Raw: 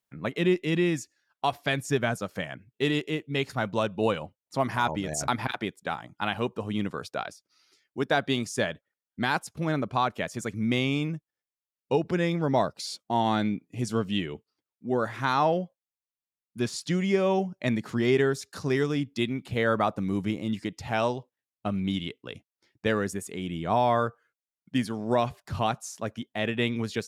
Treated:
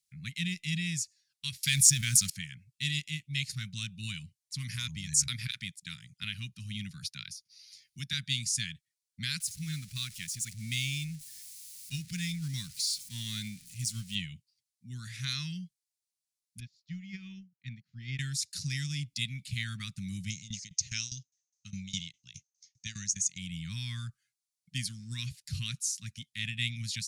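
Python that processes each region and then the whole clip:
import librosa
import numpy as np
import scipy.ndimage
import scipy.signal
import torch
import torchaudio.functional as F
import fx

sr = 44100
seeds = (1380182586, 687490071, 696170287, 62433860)

y = fx.chain(x, sr, fx.law_mismatch(coded='A'),
    fx.high_shelf(hz=3600.0, db=6.0),
    fx.env_flatten(amount_pct=70), at=(1.63, 2.3))
y = fx.chain(y, sr, fx.peak_eq(hz=7800.0, db=-10.0, octaves=0.22),
    fx.band_squash(depth_pct=40), at=(6.23, 8.13))
y = fx.chain(y, sr, fx.zero_step(step_db=-39.0),
    fx.high_shelf(hz=9800.0, db=10.0),
    fx.upward_expand(threshold_db=-33.0, expansion=1.5), at=(9.4, 14.15))
y = fx.chain(y, sr, fx.moving_average(points=5),
    fx.high_shelf(hz=2600.0, db=-9.0),
    fx.upward_expand(threshold_db=-38.0, expansion=2.5), at=(16.6, 18.19))
y = fx.chain(y, sr, fx.tremolo_shape(shape='saw_down', hz=4.9, depth_pct=90),
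    fx.lowpass_res(hz=6300.0, q=13.0), at=(20.3, 23.38))
y = scipy.signal.sosfilt(scipy.signal.cheby1(3, 1.0, [160.0, 2200.0], 'bandstop', fs=sr, output='sos'), y)
y = fx.band_shelf(y, sr, hz=6500.0, db=10.0, octaves=1.7)
y = F.gain(torch.from_numpy(y), -2.0).numpy()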